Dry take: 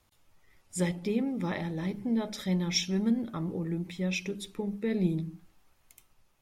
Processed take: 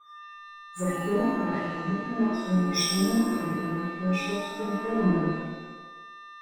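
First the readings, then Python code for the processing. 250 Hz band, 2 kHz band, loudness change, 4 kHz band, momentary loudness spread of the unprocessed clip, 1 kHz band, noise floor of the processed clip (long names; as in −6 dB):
+4.0 dB, +6.5 dB, +4.5 dB, +4.0 dB, 7 LU, +12.5 dB, −46 dBFS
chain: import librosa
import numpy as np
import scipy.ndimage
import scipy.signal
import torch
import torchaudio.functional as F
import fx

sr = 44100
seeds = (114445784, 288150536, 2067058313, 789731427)

p1 = x + 10.0 ** (-38.0 / 20.0) * np.sin(2.0 * np.pi * 1200.0 * np.arange(len(x)) / sr)
p2 = fx.quant_dither(p1, sr, seeds[0], bits=6, dither='none')
p3 = p1 + (p2 * librosa.db_to_amplitude(-7.0))
p4 = fx.spec_gate(p3, sr, threshold_db=-15, keep='strong')
p5 = fx.power_curve(p4, sr, exponent=1.4)
p6 = fx.rev_shimmer(p5, sr, seeds[1], rt60_s=1.1, semitones=7, shimmer_db=-8, drr_db=-11.5)
y = p6 * librosa.db_to_amplitude(-7.5)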